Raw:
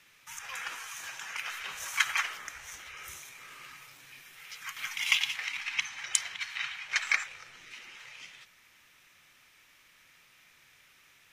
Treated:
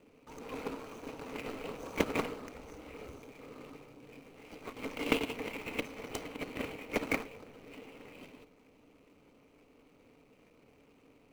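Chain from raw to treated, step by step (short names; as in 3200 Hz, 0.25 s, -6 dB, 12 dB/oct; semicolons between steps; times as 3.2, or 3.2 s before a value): median filter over 25 samples; low shelf 89 Hz +6 dB; small resonant body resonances 280/440 Hz, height 17 dB, ringing for 40 ms; gain +1 dB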